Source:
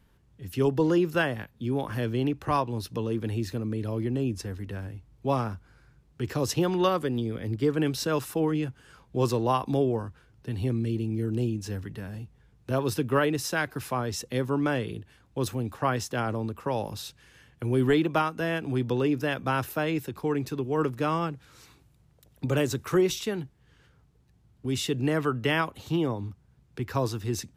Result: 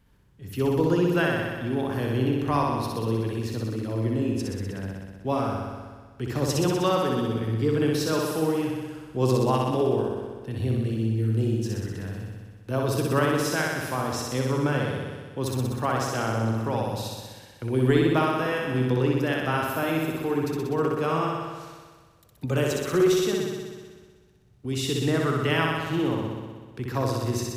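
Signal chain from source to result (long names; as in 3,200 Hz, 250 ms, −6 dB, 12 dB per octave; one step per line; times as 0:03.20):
flutter between parallel walls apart 10.7 metres, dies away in 1.5 s
level −1 dB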